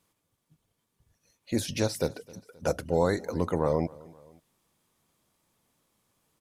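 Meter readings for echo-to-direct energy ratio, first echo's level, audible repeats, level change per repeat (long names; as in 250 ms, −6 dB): −21.5 dB, −22.5 dB, 2, −5.5 dB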